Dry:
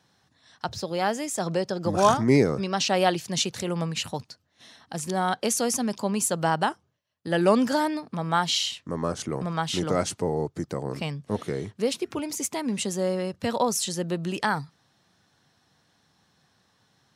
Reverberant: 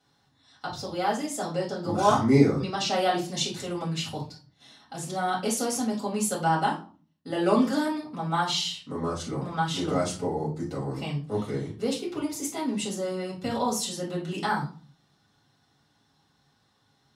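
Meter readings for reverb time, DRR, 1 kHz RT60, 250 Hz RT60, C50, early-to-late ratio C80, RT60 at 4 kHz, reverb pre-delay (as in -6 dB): 0.40 s, -5.0 dB, 0.40 s, 0.65 s, 8.5 dB, 14.5 dB, 0.30 s, 4 ms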